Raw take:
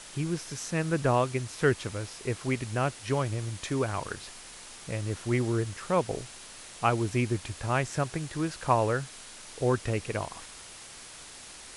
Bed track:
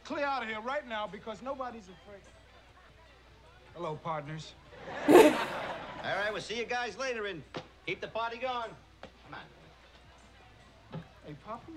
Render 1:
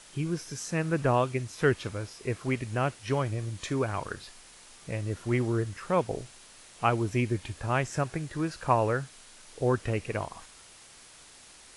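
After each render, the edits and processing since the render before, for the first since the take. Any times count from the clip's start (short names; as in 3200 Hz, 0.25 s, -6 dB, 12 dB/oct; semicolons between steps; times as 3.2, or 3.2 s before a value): noise print and reduce 6 dB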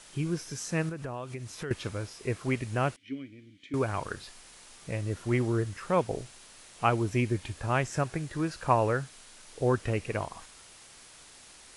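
0.89–1.71 compressor 4:1, threshold -35 dBFS; 2.96–3.74 vowel filter i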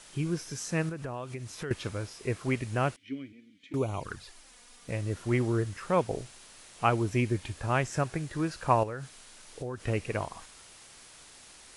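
3.32–4.89 envelope flanger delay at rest 5.2 ms, full sweep at -26.5 dBFS; 8.83–9.87 compressor, threshold -33 dBFS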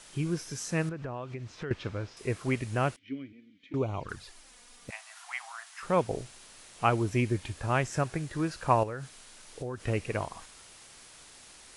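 0.89–2.17 air absorption 140 m; 2.99–4.09 air absorption 130 m; 4.9–5.83 steep high-pass 690 Hz 96 dB/oct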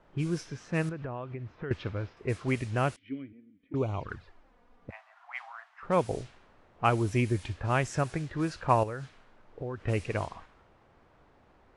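low-pass opened by the level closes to 820 Hz, open at -25 dBFS; bell 84 Hz +4.5 dB 0.55 oct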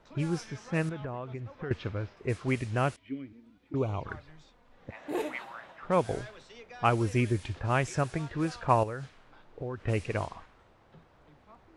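add bed track -14.5 dB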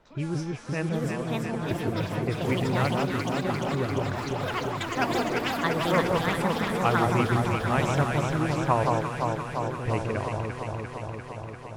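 echoes that change speed 0.796 s, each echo +6 st, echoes 3; echo with dull and thin repeats by turns 0.173 s, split 1200 Hz, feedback 87%, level -2 dB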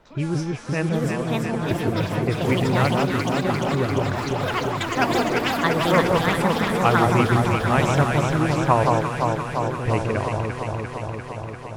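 gain +5.5 dB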